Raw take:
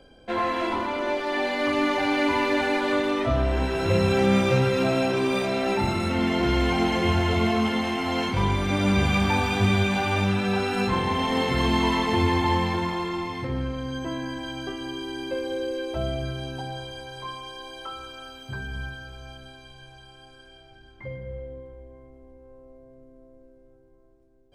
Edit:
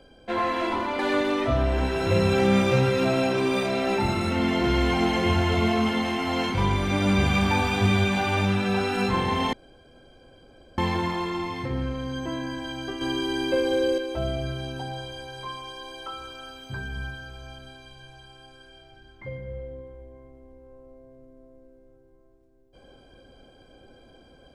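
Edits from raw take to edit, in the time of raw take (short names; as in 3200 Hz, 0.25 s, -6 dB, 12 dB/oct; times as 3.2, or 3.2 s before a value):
0.99–2.78 cut
11.32–12.57 room tone
14.8–15.77 gain +6 dB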